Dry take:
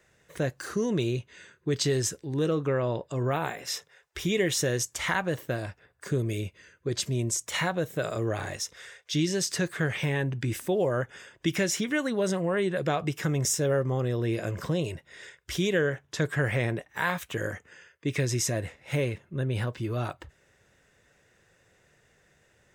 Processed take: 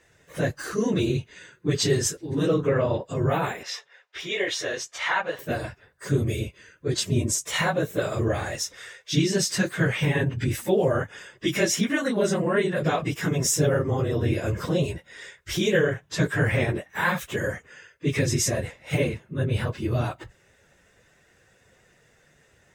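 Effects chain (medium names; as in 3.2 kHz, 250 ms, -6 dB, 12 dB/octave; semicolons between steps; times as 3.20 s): phase randomisation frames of 50 ms; 3.63–5.39 s: three-band isolator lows -21 dB, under 450 Hz, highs -19 dB, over 5.4 kHz; trim +4 dB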